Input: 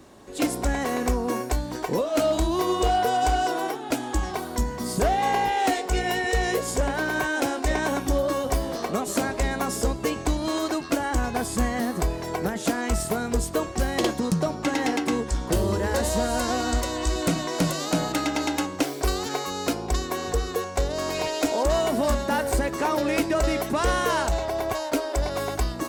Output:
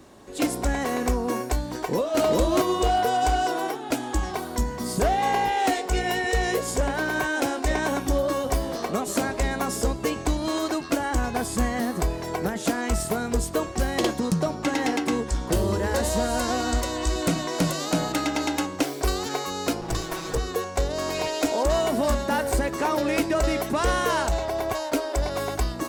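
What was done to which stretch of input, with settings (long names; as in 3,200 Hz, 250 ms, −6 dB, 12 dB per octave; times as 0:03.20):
0:01.74–0:02.21: delay throw 400 ms, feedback 10%, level −0.5 dB
0:19.81–0:20.38: lower of the sound and its delayed copy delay 6.1 ms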